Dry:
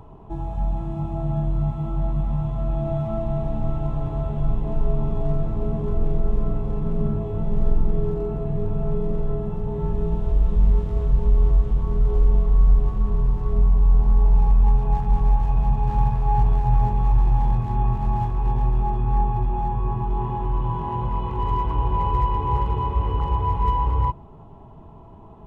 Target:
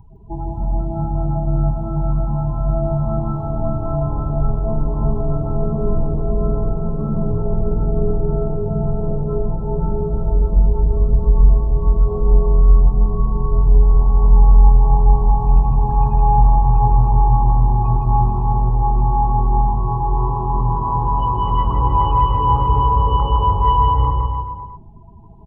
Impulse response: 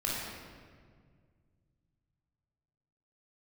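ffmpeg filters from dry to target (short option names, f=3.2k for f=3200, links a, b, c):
-filter_complex "[0:a]afftdn=nr=32:nf=-36,crystalizer=i=9.5:c=0,asplit=2[a][b];[b]aecho=0:1:160|304|433.6|550.2|655.2:0.631|0.398|0.251|0.158|0.1[c];[a][c]amix=inputs=2:normalize=0,volume=2.5dB"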